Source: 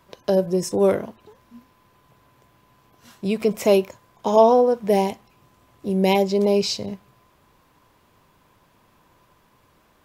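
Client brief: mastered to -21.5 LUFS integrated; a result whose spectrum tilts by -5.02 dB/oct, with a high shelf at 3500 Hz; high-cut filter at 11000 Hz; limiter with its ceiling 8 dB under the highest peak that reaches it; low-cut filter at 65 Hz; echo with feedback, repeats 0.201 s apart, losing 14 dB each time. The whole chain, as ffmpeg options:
-af "highpass=65,lowpass=11k,highshelf=f=3.5k:g=4,alimiter=limit=-11dB:level=0:latency=1,aecho=1:1:201|402:0.2|0.0399,volume=1dB"

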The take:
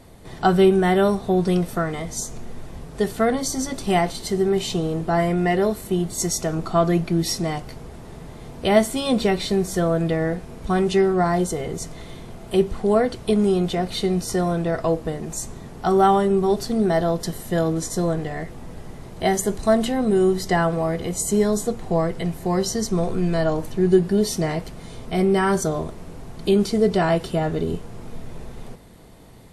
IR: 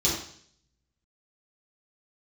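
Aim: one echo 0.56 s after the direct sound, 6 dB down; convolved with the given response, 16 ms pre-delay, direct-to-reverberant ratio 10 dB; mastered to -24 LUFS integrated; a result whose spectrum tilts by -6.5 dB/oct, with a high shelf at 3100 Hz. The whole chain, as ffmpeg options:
-filter_complex "[0:a]highshelf=f=3.1k:g=-6,aecho=1:1:560:0.501,asplit=2[a][b];[1:a]atrim=start_sample=2205,adelay=16[c];[b][c]afir=irnorm=-1:irlink=0,volume=-21dB[d];[a][d]amix=inputs=2:normalize=0,volume=-4dB"

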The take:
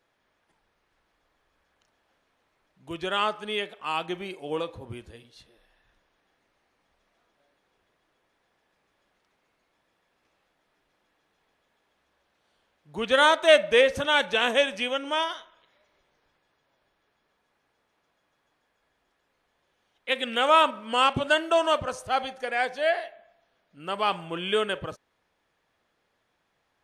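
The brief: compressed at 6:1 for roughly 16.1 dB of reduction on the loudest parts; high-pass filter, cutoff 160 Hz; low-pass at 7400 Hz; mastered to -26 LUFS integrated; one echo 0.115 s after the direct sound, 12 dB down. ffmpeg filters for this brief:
-af "highpass=160,lowpass=7.4k,acompressor=threshold=-30dB:ratio=6,aecho=1:1:115:0.251,volume=8.5dB"

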